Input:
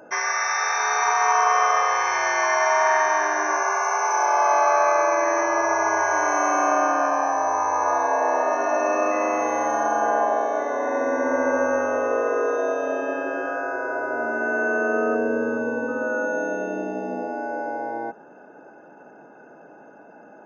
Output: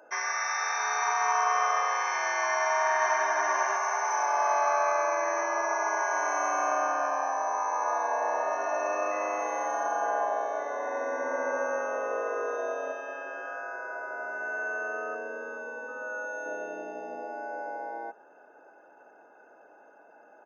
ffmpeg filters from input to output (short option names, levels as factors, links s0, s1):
-filter_complex "[0:a]asplit=2[s0][s1];[s1]afade=t=in:st=2.52:d=0.01,afade=t=out:st=3.27:d=0.01,aecho=0:1:490|980|1470|1960|2450|2940:0.595662|0.268048|0.120622|0.0542797|0.0244259|0.0109916[s2];[s0][s2]amix=inputs=2:normalize=0,asettb=1/sr,asplit=3[s3][s4][s5];[s3]atrim=end=12.924[s6];[s4]atrim=start=12.92:end=16.46,asetpts=PTS-STARTPTS,afade=t=in:d=0.004:c=qsin,afade=t=out:st=3.536:d=0.004:c=qsin,equalizer=f=180:w=0.3:g=-8[s7];[s5]atrim=start=16.456[s8];[s6][s7]acrossfade=d=0.004:c1=hsin:c2=qsin[s9];[s9][s8]acrossfade=d=0.004:c1=qsin:c2=hsin,highpass=480,volume=0.473"